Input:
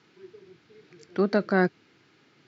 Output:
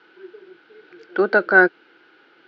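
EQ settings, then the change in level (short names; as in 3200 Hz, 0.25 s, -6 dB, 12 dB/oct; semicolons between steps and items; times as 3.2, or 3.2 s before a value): speaker cabinet 330–4400 Hz, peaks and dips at 340 Hz +8 dB, 500 Hz +7 dB, 830 Hz +7 dB, 1400 Hz +4 dB, 3000 Hz +5 dB; bell 1500 Hz +13 dB 0.21 oct; +2.5 dB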